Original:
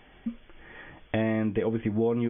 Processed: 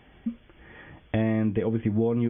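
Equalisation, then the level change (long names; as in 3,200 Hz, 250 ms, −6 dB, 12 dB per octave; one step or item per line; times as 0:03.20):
high-pass filter 53 Hz
low-shelf EQ 230 Hz +9 dB
−2.0 dB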